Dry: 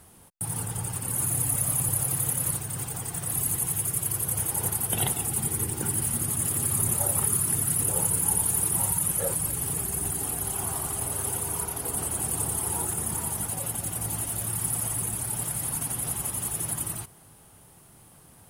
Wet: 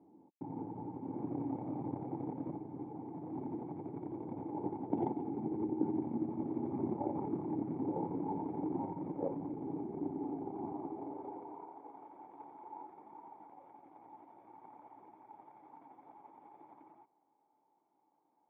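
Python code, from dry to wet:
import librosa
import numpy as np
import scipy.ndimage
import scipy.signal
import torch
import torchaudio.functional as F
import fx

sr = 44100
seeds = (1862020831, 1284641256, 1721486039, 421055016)

y = fx.cheby_harmonics(x, sr, harmonics=(6, 7), levels_db=(-26, -23), full_scale_db=-10.0)
y = fx.filter_sweep_highpass(y, sr, from_hz=250.0, to_hz=1100.0, start_s=10.67, end_s=12.02, q=0.81)
y = fx.formant_cascade(y, sr, vowel='u')
y = F.gain(torch.from_numpy(y), 13.0).numpy()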